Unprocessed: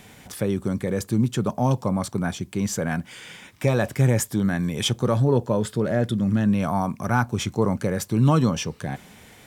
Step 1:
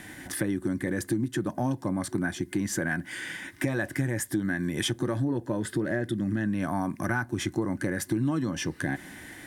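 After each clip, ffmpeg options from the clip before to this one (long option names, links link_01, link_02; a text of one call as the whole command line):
ffmpeg -i in.wav -af "superequalizer=6b=3.55:7b=0.631:11b=3.16:16b=1.78,acompressor=threshold=-25dB:ratio=6" out.wav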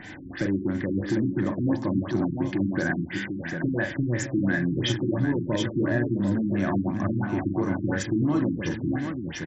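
ffmpeg -i in.wav -filter_complex "[0:a]asoftclip=type=tanh:threshold=-16.5dB,asplit=2[link_01][link_02];[link_02]aecho=0:1:41|127|581|617|746:0.531|0.158|0.237|0.237|0.501[link_03];[link_01][link_03]amix=inputs=2:normalize=0,afftfilt=real='re*lt(b*sr/1024,350*pow(8000/350,0.5+0.5*sin(2*PI*2.9*pts/sr)))':imag='im*lt(b*sr/1024,350*pow(8000/350,0.5+0.5*sin(2*PI*2.9*pts/sr)))':win_size=1024:overlap=0.75,volume=2.5dB" out.wav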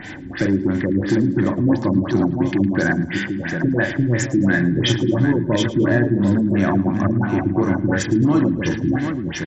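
ffmpeg -i in.wav -af "aecho=1:1:110|220|330|440:0.133|0.0573|0.0247|0.0106,volume=7.5dB" out.wav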